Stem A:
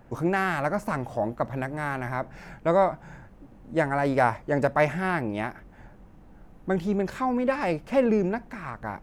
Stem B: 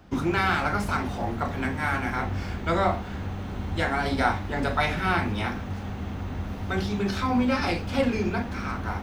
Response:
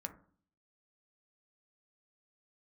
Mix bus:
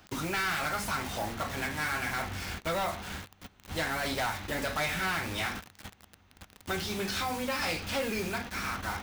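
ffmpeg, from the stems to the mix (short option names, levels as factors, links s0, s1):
-filter_complex "[0:a]adynamicequalizer=threshold=0.0141:dfrequency=270:dqfactor=1.8:tfrequency=270:tqfactor=1.8:attack=5:release=100:ratio=0.375:range=2.5:mode=cutabove:tftype=bell,acrusher=bits=6:mix=0:aa=0.000001,volume=0.562,asplit=2[s0][s1];[1:a]acompressor=threshold=0.0501:ratio=6,volume=-1,volume=0.891[s2];[s1]apad=whole_len=398202[s3];[s2][s3]sidechaingate=range=0.0708:threshold=0.00447:ratio=16:detection=peak[s4];[s0][s4]amix=inputs=2:normalize=0,tiltshelf=f=1200:g=-7.5,volume=22.4,asoftclip=hard,volume=0.0447"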